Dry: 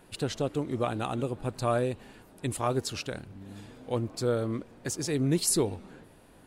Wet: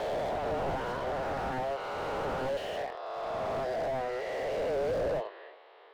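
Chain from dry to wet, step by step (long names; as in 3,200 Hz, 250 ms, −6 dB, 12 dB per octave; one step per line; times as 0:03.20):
peak hold with a rise ahead of every peak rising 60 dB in 2.83 s
single-sideband voice off tune +120 Hz 290–3,500 Hz
wrong playback speed 44.1 kHz file played as 48 kHz
slew-rate limiting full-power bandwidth 20 Hz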